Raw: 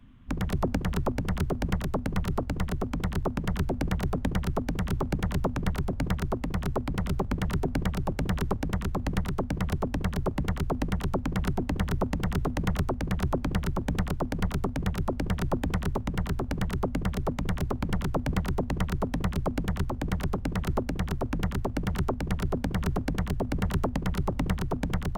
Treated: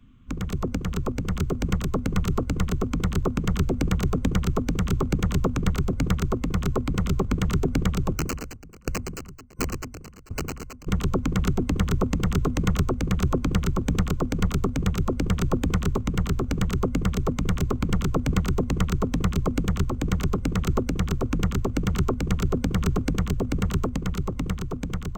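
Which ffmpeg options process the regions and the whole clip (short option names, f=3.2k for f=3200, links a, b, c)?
-filter_complex "[0:a]asettb=1/sr,asplit=3[a][b][c];[a]atrim=end=8.164[d];[b]atrim=start=8.16:end=10.87,asetpts=PTS-STARTPTS,afade=t=in:d=0.004:c=qsin,afade=t=out:st=2.706:d=0.004:c=qsin,aeval=exprs='(mod(10.6*val(0)+1,2)-1)/10.6':c=same,asuperstop=centerf=3500:order=8:qfactor=3.1,aeval=exprs='val(0)*pow(10,-28*if(lt(mod(1.4*n/s,1),2*abs(1.4)/1000),1-mod(1.4*n/s,1)/(2*abs(1.4)/1000),(mod(1.4*n/s,1)-2*abs(1.4)/1000)/(1-2*abs(1.4)/1000))/20)':c=same[e];[c]atrim=start=10.866[f];[d][e]acrossfade=d=0.004:c1=hsin:c2=qsin[g];[g][f]acrossfade=d=0.004:c1=qsin:c2=hsin,superequalizer=8b=0.447:9b=0.447:11b=0.562:15b=1.78:16b=0.251,dynaudnorm=f=150:g=21:m=5dB"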